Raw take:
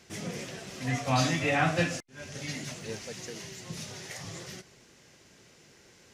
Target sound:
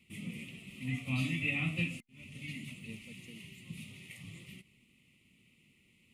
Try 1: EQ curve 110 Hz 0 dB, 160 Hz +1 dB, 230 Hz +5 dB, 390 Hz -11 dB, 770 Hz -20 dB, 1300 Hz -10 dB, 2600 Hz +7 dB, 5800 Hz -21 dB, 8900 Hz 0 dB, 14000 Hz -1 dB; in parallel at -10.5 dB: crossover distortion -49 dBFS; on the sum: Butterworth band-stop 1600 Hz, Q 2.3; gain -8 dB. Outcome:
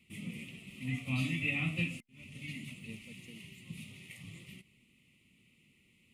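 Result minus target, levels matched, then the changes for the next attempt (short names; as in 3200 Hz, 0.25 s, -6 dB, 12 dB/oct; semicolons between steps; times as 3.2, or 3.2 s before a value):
crossover distortion: distortion +6 dB
change: crossover distortion -56 dBFS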